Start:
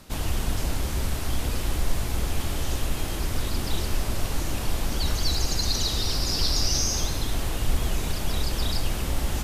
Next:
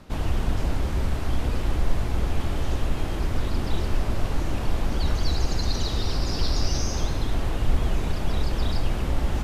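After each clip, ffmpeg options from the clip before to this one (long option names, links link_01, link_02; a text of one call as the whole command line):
ffmpeg -i in.wav -af "lowpass=frequency=1700:poles=1,volume=2.5dB" out.wav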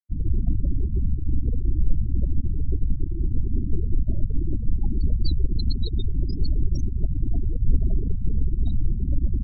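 ffmpeg -i in.wav -af "aeval=exprs='sgn(val(0))*max(abs(val(0))-0.00841,0)':channel_layout=same,afftfilt=real='re*gte(hypot(re,im),0.112)':imag='im*gte(hypot(re,im),0.112)':win_size=1024:overlap=0.75,volume=3dB" out.wav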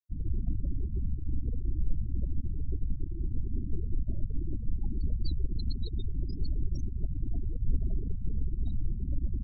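ffmpeg -i in.wav -af "equalizer=frequency=1800:width_type=o:width=1.7:gain=-6,volume=-8.5dB" out.wav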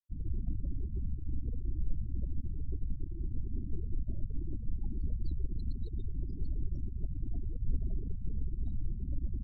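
ffmpeg -i in.wav -af "adynamicsmooth=sensitivity=4.5:basefreq=1600,volume=-4dB" out.wav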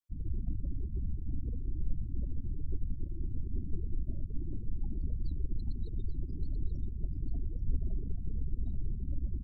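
ffmpeg -i in.wav -af "aecho=1:1:834:0.335" out.wav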